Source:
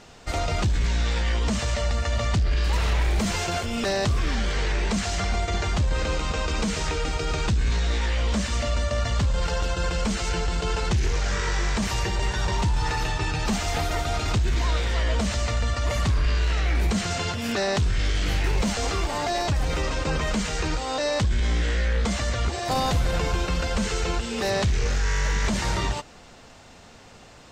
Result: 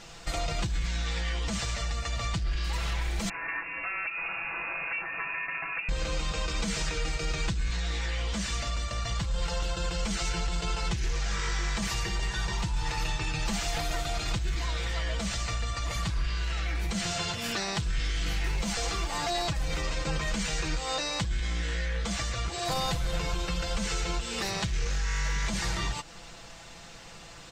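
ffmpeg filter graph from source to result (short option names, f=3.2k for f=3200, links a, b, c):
-filter_complex "[0:a]asettb=1/sr,asplit=3[a][b][c];[a]atrim=end=3.294[d];[b]atrim=start=3.29:end=5.89,asetpts=PTS-STARTPTS,afade=t=in:d=0.004:c=qsin,afade=t=out:st=2.596:d=0.004:c=qsin,aeval=exprs='val(0)*sin(2*PI*290*n/s)':c=same,equalizer=f=230:w=0.54:g=-13,lowpass=f=2.4k:t=q:w=0.5098,lowpass=f=2.4k:t=q:w=0.6013,lowpass=f=2.4k:t=q:w=0.9,lowpass=f=2.4k:t=q:w=2.563,afreqshift=-2800[e];[c]atrim=start=5.886[f];[d][e]acrossfade=d=0.004:c1=hsin:c2=qsin[g];[g][f]acrossfade=d=0.004:c1=qsin:c2=hsin,equalizer=f=360:w=0.39:g=-6.5,acompressor=threshold=-33dB:ratio=2.5,aecho=1:1:6:0.62,volume=2.5dB"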